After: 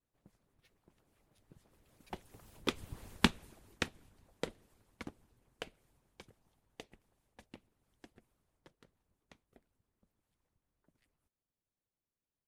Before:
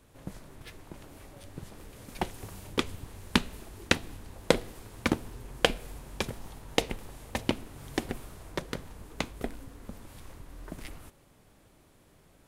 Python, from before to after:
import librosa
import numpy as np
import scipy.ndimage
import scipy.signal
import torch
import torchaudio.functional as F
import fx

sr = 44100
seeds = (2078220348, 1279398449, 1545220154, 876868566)

y = fx.doppler_pass(x, sr, speed_mps=13, closest_m=2.8, pass_at_s=3.04)
y = fx.vibrato(y, sr, rate_hz=1.7, depth_cents=51.0)
y = fx.hpss(y, sr, part='harmonic', gain_db=-17)